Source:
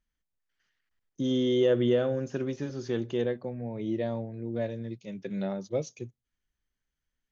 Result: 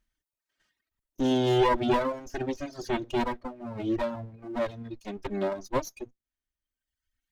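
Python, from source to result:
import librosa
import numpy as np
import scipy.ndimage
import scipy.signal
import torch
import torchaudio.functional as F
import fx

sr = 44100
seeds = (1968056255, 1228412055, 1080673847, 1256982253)

y = fx.lower_of_two(x, sr, delay_ms=3.2)
y = fx.dereverb_blind(y, sr, rt60_s=1.3)
y = y * 10.0 ** (5.5 / 20.0)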